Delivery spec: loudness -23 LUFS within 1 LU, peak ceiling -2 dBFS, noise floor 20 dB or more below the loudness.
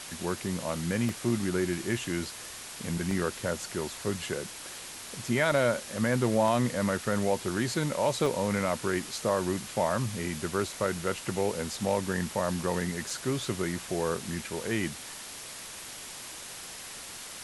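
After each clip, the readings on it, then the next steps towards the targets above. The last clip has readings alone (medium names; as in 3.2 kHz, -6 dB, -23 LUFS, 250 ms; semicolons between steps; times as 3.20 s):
dropouts 7; longest dropout 1.7 ms; noise floor -43 dBFS; noise floor target -51 dBFS; loudness -31.0 LUFS; peak level -12.5 dBFS; loudness target -23.0 LUFS
-> interpolate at 1.09/3.11/5.52/6.48/8.26/13.10/14.16 s, 1.7 ms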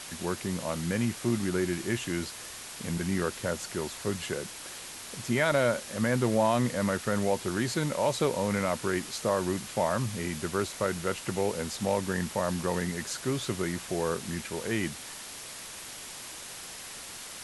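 dropouts 0; noise floor -43 dBFS; noise floor target -51 dBFS
-> noise reduction 8 dB, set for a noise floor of -43 dBFS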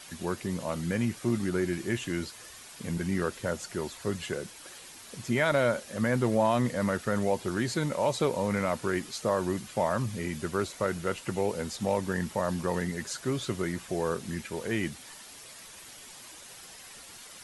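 noise floor -48 dBFS; noise floor target -51 dBFS
-> noise reduction 6 dB, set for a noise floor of -48 dBFS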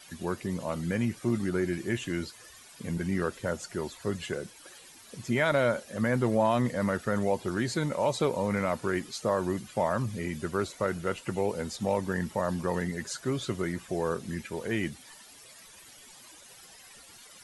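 noise floor -52 dBFS; loudness -30.5 LUFS; peak level -13.0 dBFS; loudness target -23.0 LUFS
-> trim +7.5 dB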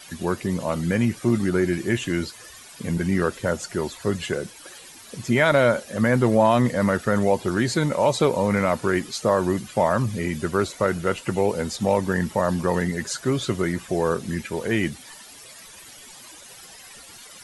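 loudness -23.0 LUFS; peak level -5.5 dBFS; noise floor -45 dBFS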